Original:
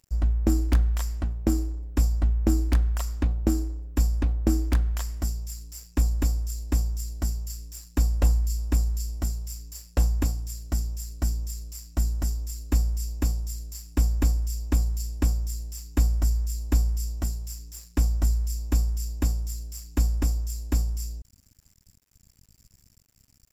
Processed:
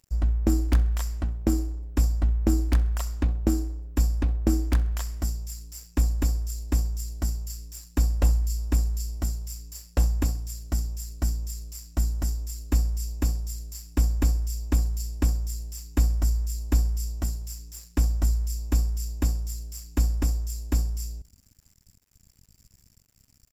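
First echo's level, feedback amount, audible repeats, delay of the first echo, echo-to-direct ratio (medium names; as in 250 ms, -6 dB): -20.5 dB, 35%, 2, 65 ms, -20.0 dB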